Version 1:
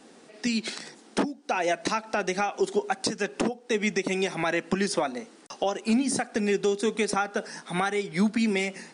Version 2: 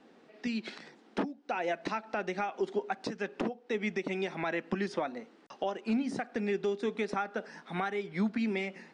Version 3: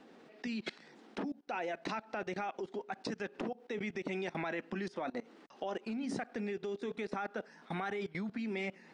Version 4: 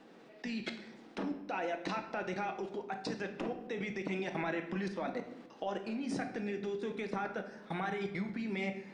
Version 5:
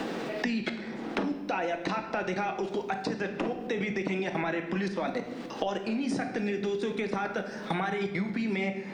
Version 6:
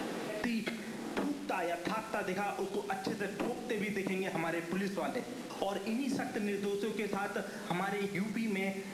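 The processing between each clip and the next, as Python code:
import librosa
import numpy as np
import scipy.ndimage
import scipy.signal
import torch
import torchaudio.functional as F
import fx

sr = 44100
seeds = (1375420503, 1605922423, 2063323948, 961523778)

y1 = scipy.signal.sosfilt(scipy.signal.butter(2, 3200.0, 'lowpass', fs=sr, output='sos'), x)
y1 = y1 * librosa.db_to_amplitude(-6.5)
y2 = fx.level_steps(y1, sr, step_db=21)
y2 = y2 * librosa.db_to_amplitude(5.0)
y3 = fx.room_shoebox(y2, sr, seeds[0], volume_m3=320.0, walls='mixed', distance_m=0.65)
y4 = fx.band_squash(y3, sr, depth_pct=100)
y4 = y4 * librosa.db_to_amplitude(6.0)
y5 = fx.delta_mod(y4, sr, bps=64000, step_db=-39.0)
y5 = y5 * librosa.db_to_amplitude(-4.5)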